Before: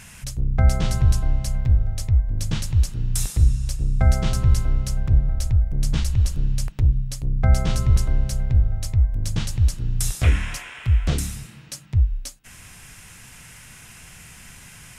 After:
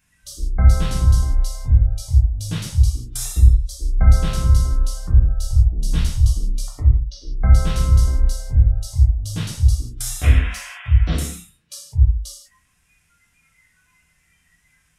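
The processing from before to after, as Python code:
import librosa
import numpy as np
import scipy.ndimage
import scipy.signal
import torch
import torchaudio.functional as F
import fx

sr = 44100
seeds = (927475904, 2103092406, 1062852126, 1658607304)

y = fx.env_lowpass(x, sr, base_hz=1800.0, full_db=-15.0, at=(6.72, 7.65), fade=0.02)
y = fx.noise_reduce_blind(y, sr, reduce_db=22)
y = fx.rev_gated(y, sr, seeds[0], gate_ms=210, shape='falling', drr_db=-3.5)
y = F.gain(torch.from_numpy(y), -3.5).numpy()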